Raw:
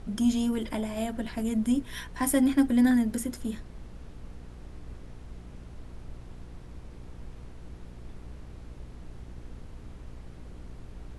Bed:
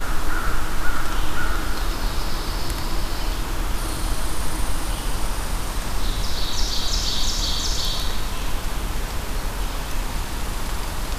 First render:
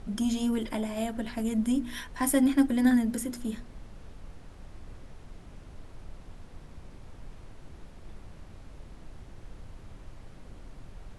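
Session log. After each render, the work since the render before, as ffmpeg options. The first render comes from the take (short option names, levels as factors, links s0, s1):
-af "bandreject=f=60:t=h:w=4,bandreject=f=120:t=h:w=4,bandreject=f=180:t=h:w=4,bandreject=f=240:t=h:w=4,bandreject=f=300:t=h:w=4,bandreject=f=360:t=h:w=4,bandreject=f=420:t=h:w=4,bandreject=f=480:t=h:w=4"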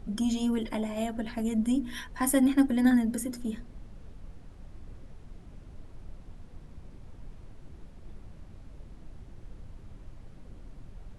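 -af "afftdn=nr=6:nf=-49"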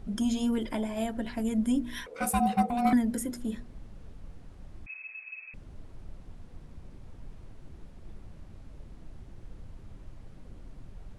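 -filter_complex "[0:a]asettb=1/sr,asplit=3[s0][s1][s2];[s0]atrim=end=2.064[s3];[s1]atrim=start=2.06:end=2.93,asetpts=PTS-STARTPTS,afade=t=in:d=0.004:c=qsin,afade=t=out:st=0.866:d=0.004:c=qsin,aeval=exprs='val(0)*sin(2*PI*480*n/s)':c=same[s4];[s2]atrim=start=2.926[s5];[s3][s4]acrossfade=d=0.004:c1=hsin:c2=qsin[s6];[s6][s5]acrossfade=d=0.004:c1=qsin:c2=hsin,asettb=1/sr,asplit=3[s7][s8][s9];[s7]atrim=end=4.864[s10];[s8]atrim=start=4.86:end=5.54,asetpts=PTS-STARTPTS,afade=t=in:d=0.004:c=qsin,afade=t=out:st=0.676:d=0.004:c=qsin,lowpass=f=2200:t=q:w=0.5098,lowpass=f=2200:t=q:w=0.6013,lowpass=f=2200:t=q:w=0.9,lowpass=f=2200:t=q:w=2.563,afreqshift=-2600[s11];[s9]atrim=start=5.536[s12];[s10][s11]acrossfade=d=0.004:c1=hsin:c2=qsin[s13];[s13][s12]acrossfade=d=0.004:c1=qsin:c2=hsin"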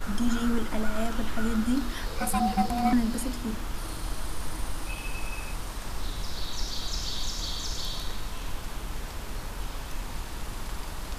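-filter_complex "[1:a]volume=0.335[s0];[0:a][s0]amix=inputs=2:normalize=0"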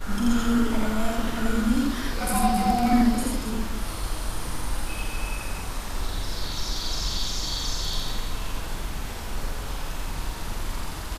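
-filter_complex "[0:a]asplit=2[s0][s1];[s1]adelay=46,volume=0.501[s2];[s0][s2]amix=inputs=2:normalize=0,aecho=1:1:84.55|271.1:1|0.355"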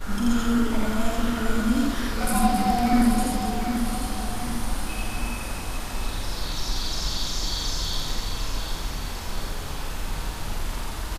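-af "aecho=1:1:749|1498|2247|2996|3745:0.422|0.198|0.0932|0.0438|0.0206"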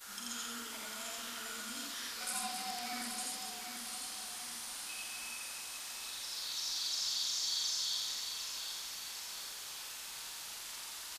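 -filter_complex "[0:a]acrossover=split=7800[s0][s1];[s1]acompressor=threshold=0.00178:ratio=4:attack=1:release=60[s2];[s0][s2]amix=inputs=2:normalize=0,aderivative"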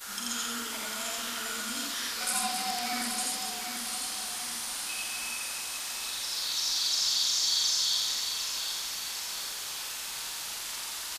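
-af "volume=2.66"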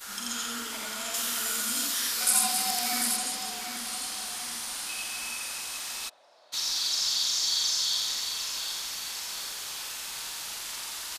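-filter_complex "[0:a]asettb=1/sr,asplit=3[s0][s1][s2];[s0]atrim=end=1.144[s3];[s1]atrim=start=1.14:end=3.17,asetpts=PTS-STARTPTS,afade=t=in:d=0.004:c=qsin,afade=t=out:st=2.026:d=0.004:c=qsin,highshelf=f=6800:g=12[s4];[s2]atrim=start=3.166[s5];[s3][s4]acrossfade=d=0.004:c1=hsin:c2=qsin[s6];[s6][s5]acrossfade=d=0.004:c1=qsin:c2=hsin,asplit=3[s7][s8][s9];[s7]afade=t=out:st=6.08:d=0.02[s10];[s8]bandpass=f=630:t=q:w=5.6,afade=t=in:st=6.08:d=0.02,afade=t=out:st=6.52:d=0.02[s11];[s9]afade=t=in:st=6.52:d=0.02[s12];[s10][s11][s12]amix=inputs=3:normalize=0"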